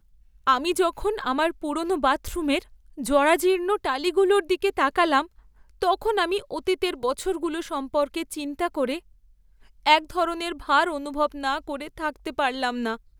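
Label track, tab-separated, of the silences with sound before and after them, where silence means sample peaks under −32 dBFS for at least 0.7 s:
8.980000	9.860000	silence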